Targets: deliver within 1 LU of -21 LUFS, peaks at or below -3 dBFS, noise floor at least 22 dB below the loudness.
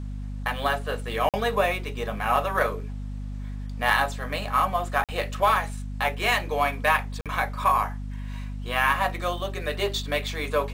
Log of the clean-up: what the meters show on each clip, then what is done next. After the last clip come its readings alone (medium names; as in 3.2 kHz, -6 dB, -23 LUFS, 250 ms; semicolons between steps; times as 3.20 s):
dropouts 3; longest dropout 47 ms; hum 50 Hz; highest harmonic 250 Hz; hum level -31 dBFS; loudness -25.5 LUFS; peak level -8.0 dBFS; loudness target -21.0 LUFS
-> interpolate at 1.29/5.04/7.21 s, 47 ms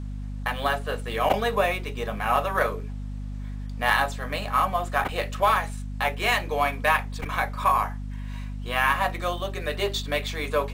dropouts 0; hum 50 Hz; highest harmonic 250 Hz; hum level -31 dBFS
-> hum notches 50/100/150/200/250 Hz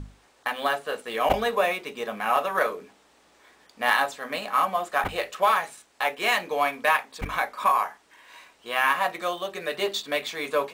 hum not found; loudness -26.0 LUFS; peak level -8.5 dBFS; loudness target -21.0 LUFS
-> trim +5 dB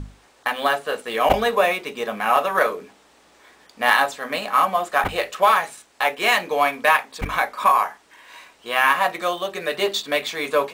loudness -21.0 LUFS; peak level -3.5 dBFS; noise floor -55 dBFS